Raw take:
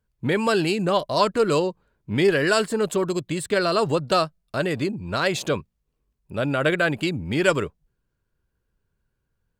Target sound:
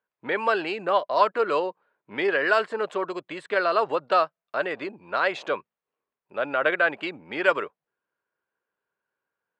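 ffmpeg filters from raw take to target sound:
ffmpeg -i in.wav -af "highpass=620,lowpass=2100,volume=2.5dB" out.wav

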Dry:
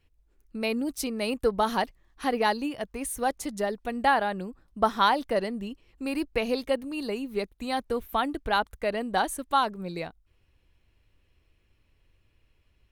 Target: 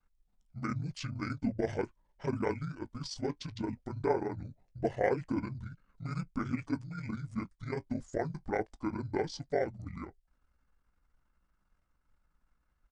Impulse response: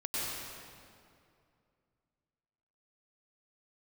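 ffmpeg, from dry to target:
-af "aeval=exprs='val(0)*sin(2*PI*29*n/s)':channel_layout=same,flanger=delay=7.6:depth=2.4:regen=-43:speed=0.18:shape=sinusoidal,asetrate=22696,aresample=44100,atempo=1.94306"

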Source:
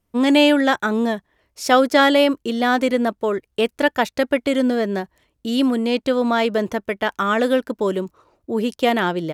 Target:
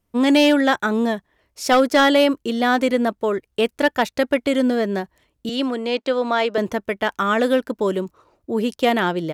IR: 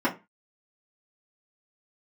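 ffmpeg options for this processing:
-filter_complex "[0:a]asettb=1/sr,asplit=3[link_01][link_02][link_03];[link_01]atrim=end=5.494[link_04];[link_02]atrim=start=5.49:end=6.58,asetpts=PTS-STARTPTS,afade=type=in:duration=0.004:curve=qsin,afade=type=out:start_time=1.086:duration=0.004:curve=qsin,acrossover=split=270 7400:gain=0.0891 1 0.2[link_05][link_06][link_07];[link_05][link_06][link_07]amix=inputs=3:normalize=0[link_08];[link_03]atrim=start=6.576[link_09];[link_04][link_08]acrossfade=duration=0.004:curve1=hsin:curve2=qsin[link_10];[link_10][link_09]acrossfade=duration=0.004:curve1=qsin:curve2=hsin,asoftclip=type=hard:threshold=-8.5dB"

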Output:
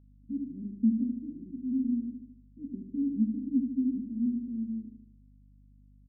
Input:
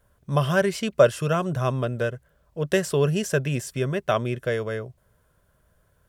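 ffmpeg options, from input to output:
ffmpeg -i in.wav -filter_complex "[0:a]asuperpass=centerf=250:order=8:qfactor=3.5,asplit=2[link_01][link_02];[link_02]aecho=0:1:75|150|225|300|375|450|525:0.501|0.266|0.141|0.0746|0.0395|0.021|0.0111[link_03];[link_01][link_03]amix=inputs=2:normalize=0,aeval=exprs='val(0)+0.000708*(sin(2*PI*50*n/s)+sin(2*PI*2*50*n/s)/2+sin(2*PI*3*50*n/s)/3+sin(2*PI*4*50*n/s)/4+sin(2*PI*5*50*n/s)/5)':channel_layout=same,volume=6.5dB" out.wav

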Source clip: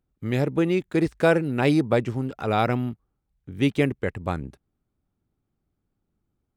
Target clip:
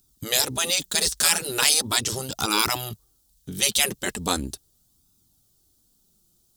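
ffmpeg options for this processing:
ffmpeg -i in.wav -af "aexciter=amount=7:drive=9:freq=3400,afftfilt=real='re*lt(hypot(re,im),0.224)':imag='im*lt(hypot(re,im),0.224)':win_size=1024:overlap=0.75,flanger=delay=0.8:depth=4.8:regen=-32:speed=0.39:shape=sinusoidal,volume=8.5dB" out.wav

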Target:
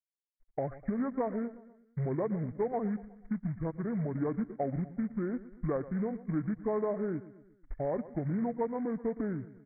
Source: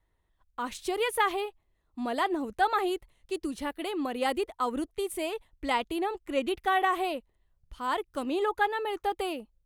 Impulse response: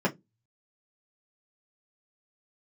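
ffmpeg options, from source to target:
-af "afftfilt=real='re*gte(hypot(re,im),0.01)':imag='im*gte(hypot(re,im),0.01)':win_size=1024:overlap=0.75,lowpass=1400,acompressor=threshold=-43dB:ratio=3,aecho=1:1:121|242|363|484:0.158|0.0777|0.0381|0.0186,aresample=8000,acrusher=bits=6:mode=log:mix=0:aa=0.000001,aresample=44100,asetrate=24750,aresample=44100,atempo=1.7818,crystalizer=i=3:c=0,volume=9dB"

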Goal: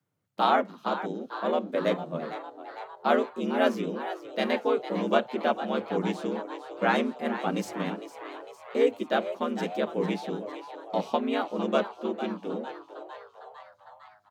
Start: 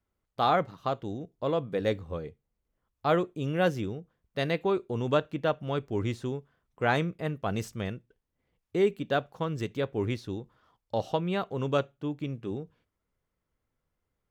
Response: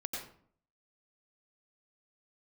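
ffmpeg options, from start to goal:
-filter_complex "[0:a]asplit=8[link_01][link_02][link_03][link_04][link_05][link_06][link_07][link_08];[link_02]adelay=454,afreqshift=130,volume=-12dB[link_09];[link_03]adelay=908,afreqshift=260,volume=-16.3dB[link_10];[link_04]adelay=1362,afreqshift=390,volume=-20.6dB[link_11];[link_05]adelay=1816,afreqshift=520,volume=-24.9dB[link_12];[link_06]adelay=2270,afreqshift=650,volume=-29.2dB[link_13];[link_07]adelay=2724,afreqshift=780,volume=-33.5dB[link_14];[link_08]adelay=3178,afreqshift=910,volume=-37.8dB[link_15];[link_01][link_09][link_10][link_11][link_12][link_13][link_14][link_15]amix=inputs=8:normalize=0,asplit=2[link_16][link_17];[link_17]asetrate=37084,aresample=44100,atempo=1.18921,volume=-4dB[link_18];[link_16][link_18]amix=inputs=2:normalize=0,afreqshift=84"

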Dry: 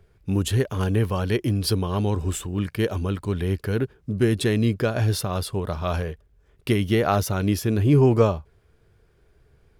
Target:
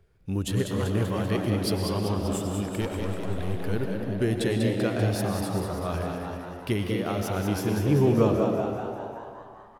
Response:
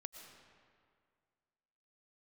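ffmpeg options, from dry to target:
-filter_complex "[0:a]asettb=1/sr,asplit=3[link_01][link_02][link_03];[link_01]atrim=end=2.814[link_04];[link_02]atrim=start=2.81:end=3.54,asetpts=PTS-STARTPTS,afade=type=in:duration=0.004:curve=qsin,afade=type=out:start_time=0.726:duration=0.004:curve=qsin,aeval=exprs='clip(val(0),-1,0.0398)':channel_layout=same[link_05];[link_03]atrim=start=3.536[link_06];[link_04][link_05]acrossfade=duration=0.004:curve1=hsin:curve2=qsin[link_07];[link_07][link_06]acrossfade=duration=0.004:curve1=qsin:curve2=hsin,asettb=1/sr,asplit=3[link_08][link_09][link_10];[link_08]atrim=end=5.154[link_11];[link_09]atrim=start=5.15:end=5.88,asetpts=PTS-STARTPTS,afade=type=in:duration=0.004:curve=qsin,afade=type=out:start_time=0.726:duration=0.004:curve=qsin,equalizer=frequency=3000:width_type=o:width=1.1:gain=-8[link_12];[link_10]atrim=start=5.876[link_13];[link_11][link_12]acrossfade=duration=0.004:curve1=hsin:curve2=qsin[link_14];[link_14][link_13]acrossfade=duration=0.004:curve1=qsin:curve2=hsin,asettb=1/sr,asplit=3[link_15][link_16][link_17];[link_15]atrim=end=6.904[link_18];[link_16]atrim=start=6.9:end=7.34,asetpts=PTS-STARTPTS,afade=type=in:duration=0.004:curve=qsin,afade=type=out:start_time=0.436:duration=0.004:curve=qsin,acompressor=threshold=-22dB:ratio=6[link_19];[link_17]atrim=start=7.336[link_20];[link_18][link_19]acrossfade=duration=0.004:curve1=hsin:curve2=qsin[link_21];[link_21][link_20]acrossfade=duration=0.004:curve1=qsin:curve2=hsin,asplit=9[link_22][link_23][link_24][link_25][link_26][link_27][link_28][link_29][link_30];[link_23]adelay=194,afreqshift=91,volume=-6dB[link_31];[link_24]adelay=388,afreqshift=182,volume=-10.3dB[link_32];[link_25]adelay=582,afreqshift=273,volume=-14.6dB[link_33];[link_26]adelay=776,afreqshift=364,volume=-18.9dB[link_34];[link_27]adelay=970,afreqshift=455,volume=-23.2dB[link_35];[link_28]adelay=1164,afreqshift=546,volume=-27.5dB[link_36];[link_29]adelay=1358,afreqshift=637,volume=-31.8dB[link_37];[link_30]adelay=1552,afreqshift=728,volume=-36.1dB[link_38];[link_22][link_31][link_32][link_33][link_34][link_35][link_36][link_37][link_38]amix=inputs=9:normalize=0[link_39];[1:a]atrim=start_sample=2205[link_40];[link_39][link_40]afir=irnorm=-1:irlink=0"

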